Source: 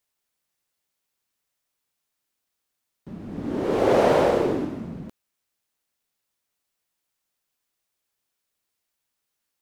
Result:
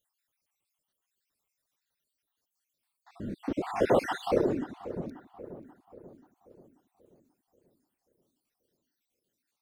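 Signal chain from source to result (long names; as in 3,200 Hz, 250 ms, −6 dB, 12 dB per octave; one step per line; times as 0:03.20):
time-frequency cells dropped at random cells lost 62%
in parallel at −2 dB: downward compressor, threshold −34 dBFS, peak gain reduction 17.5 dB
on the sum: reverb reduction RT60 1.4 s
feedback echo with a low-pass in the loop 535 ms, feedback 51%, low-pass 1,700 Hz, level −13.5 dB
level −3.5 dB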